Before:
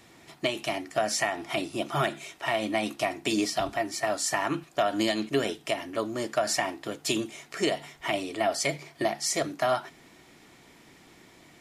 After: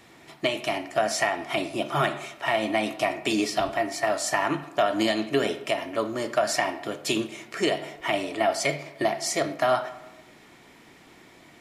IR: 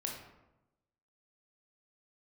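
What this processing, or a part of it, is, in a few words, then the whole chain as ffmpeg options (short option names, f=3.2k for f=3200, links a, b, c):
filtered reverb send: -filter_complex "[0:a]asplit=2[a][b];[b]highpass=f=350:p=1,lowpass=4.1k[c];[1:a]atrim=start_sample=2205[d];[c][d]afir=irnorm=-1:irlink=0,volume=-4dB[e];[a][e]amix=inputs=2:normalize=0"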